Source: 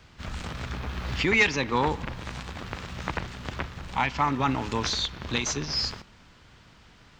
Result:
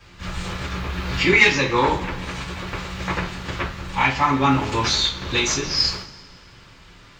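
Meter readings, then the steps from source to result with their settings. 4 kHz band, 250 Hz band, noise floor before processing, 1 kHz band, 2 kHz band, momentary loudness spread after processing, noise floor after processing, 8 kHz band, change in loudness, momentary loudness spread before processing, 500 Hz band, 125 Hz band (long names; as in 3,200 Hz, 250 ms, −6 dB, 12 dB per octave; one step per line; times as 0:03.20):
+8.0 dB, +6.5 dB, −55 dBFS, +6.5 dB, +7.5 dB, 15 LU, −47 dBFS, +7.0 dB, +7.5 dB, 15 LU, +6.5 dB, +6.0 dB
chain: coupled-rooms reverb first 0.29 s, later 1.7 s, from −22 dB, DRR −9 dB
level −2 dB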